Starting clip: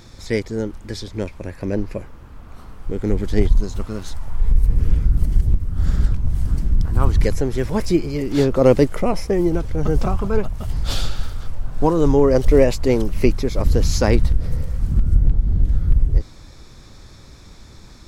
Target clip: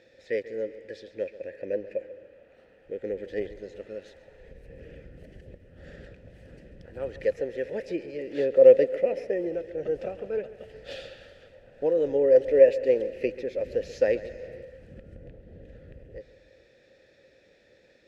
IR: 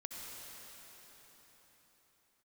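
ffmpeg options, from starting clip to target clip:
-filter_complex "[0:a]asplit=3[a][b][c];[a]bandpass=f=530:t=q:w=8,volume=0dB[d];[b]bandpass=f=1.84k:t=q:w=8,volume=-6dB[e];[c]bandpass=f=2.48k:t=q:w=8,volume=-9dB[f];[d][e][f]amix=inputs=3:normalize=0,asplit=2[g][h];[1:a]atrim=start_sample=2205,afade=t=out:st=0.41:d=0.01,atrim=end_sample=18522,adelay=136[i];[h][i]afir=irnorm=-1:irlink=0,volume=-11dB[j];[g][j]amix=inputs=2:normalize=0,volume=2.5dB"

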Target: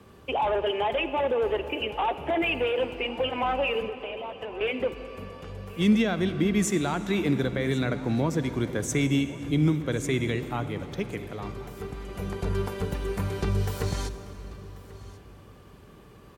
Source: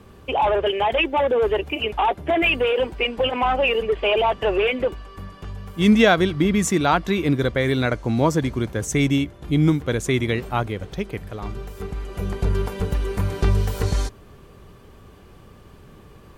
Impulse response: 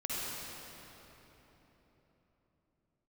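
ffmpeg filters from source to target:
-filter_complex "[0:a]highpass=f=100:p=1,acrossover=split=250[a][b];[b]alimiter=limit=-16dB:level=0:latency=1:release=251[c];[a][c]amix=inputs=2:normalize=0,asettb=1/sr,asplit=3[d][e][f];[d]atrim=end=3.874[g];[e]atrim=start=3.87:end=4.61,asetpts=PTS-STARTPTS,afade=t=in:d=0.004:c=qsin,afade=t=out:st=0.736:d=0.004:c=qsin,acompressor=threshold=-32dB:ratio=6[h];[f]atrim=start=4.606[i];[g][h]acrossfade=d=0.004:c1=hsin:c2=qsin[j];[j][i]acrossfade=d=0.004:c1=qsin:c2=hsin,aecho=1:1:1088:0.1,asplit=2[k][l];[1:a]atrim=start_sample=2205[m];[l][m]afir=irnorm=-1:irlink=0,volume=-14.5dB[n];[k][n]amix=inputs=2:normalize=0,volume=-4.5dB"

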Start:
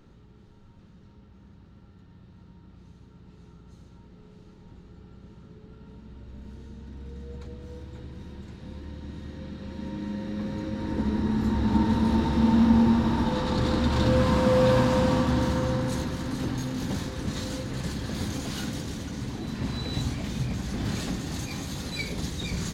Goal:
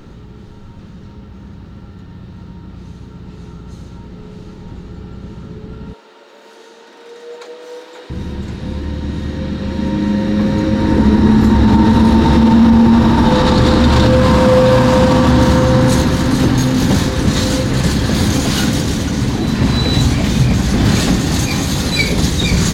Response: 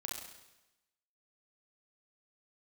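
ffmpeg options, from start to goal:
-filter_complex "[0:a]asettb=1/sr,asplit=3[a][b][c];[a]atrim=end=5.934[d];[b]atrim=start=5.93:end=8.1,asetpts=PTS-STARTPTS,afade=t=in:d=0.004:c=qsin,afade=t=out:st=2.166:d=0.004:c=qsin,highpass=f=450:w=0.5412,highpass=f=450:w=1.3066[e];[c]atrim=start=8.096[f];[d][e]acrossfade=d=0.004:c1=hsin:c2=qsin[g];[g][f]acrossfade=d=0.004:c1=qsin:c2=hsin,alimiter=level_in=18.5dB:limit=-1dB:release=50:level=0:latency=1,volume=-1dB"

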